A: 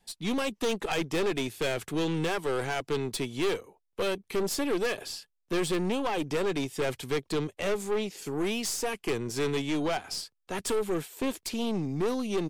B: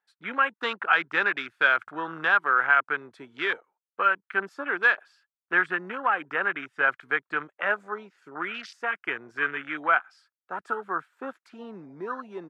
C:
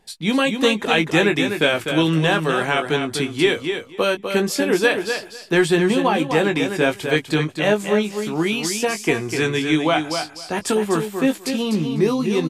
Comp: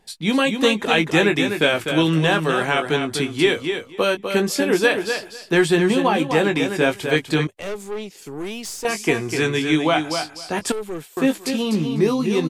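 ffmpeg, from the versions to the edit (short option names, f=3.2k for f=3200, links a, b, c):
-filter_complex "[0:a]asplit=2[a][b];[2:a]asplit=3[c][d][e];[c]atrim=end=7.472[f];[a]atrim=start=7.468:end=8.852[g];[d]atrim=start=8.848:end=10.722[h];[b]atrim=start=10.718:end=11.172[i];[e]atrim=start=11.168[j];[f][g]acrossfade=d=0.004:c1=hsin:c2=hsin[k];[k][h]acrossfade=d=0.004:c1=hsin:c2=hsin[l];[l][i]acrossfade=d=0.004:c1=hsin:c2=hsin[m];[m][j]acrossfade=d=0.004:c1=hsin:c2=hsin"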